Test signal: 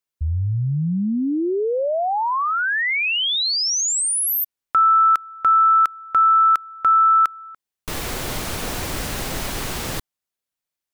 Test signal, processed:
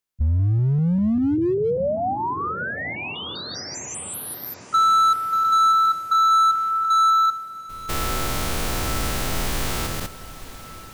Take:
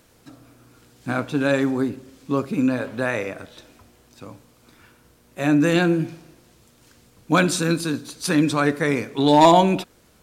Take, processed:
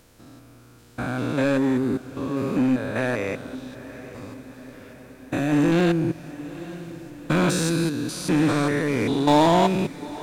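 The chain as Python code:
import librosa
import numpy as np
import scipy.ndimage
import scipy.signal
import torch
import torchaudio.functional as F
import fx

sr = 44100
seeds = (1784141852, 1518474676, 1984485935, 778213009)

p1 = fx.spec_steps(x, sr, hold_ms=200)
p2 = fx.low_shelf(p1, sr, hz=73.0, db=6.0)
p3 = 10.0 ** (-20.0 / 20.0) * (np.abs((p2 / 10.0 ** (-20.0 / 20.0) + 3.0) % 4.0 - 2.0) - 1.0)
p4 = p2 + (p3 * 10.0 ** (-5.5 / 20.0))
p5 = fx.echo_diffused(p4, sr, ms=897, feedback_pct=57, wet_db=-15.5)
y = p5 * 10.0 ** (-1.5 / 20.0)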